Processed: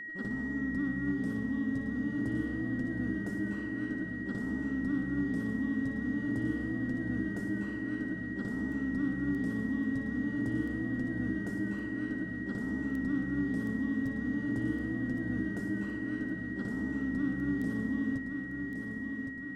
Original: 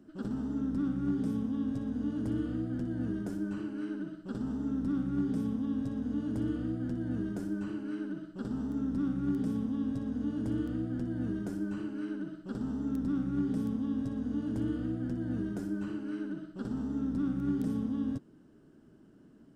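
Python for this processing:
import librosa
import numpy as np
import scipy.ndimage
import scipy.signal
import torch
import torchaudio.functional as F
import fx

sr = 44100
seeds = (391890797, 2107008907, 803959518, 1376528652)

y = x + 10.0 ** (-38.0 / 20.0) * np.sin(2.0 * np.pi * 1900.0 * np.arange(len(x)) / sr)
y = fx.echo_feedback(y, sr, ms=1114, feedback_pct=56, wet_db=-6.5)
y = F.gain(torch.from_numpy(y), -1.5).numpy()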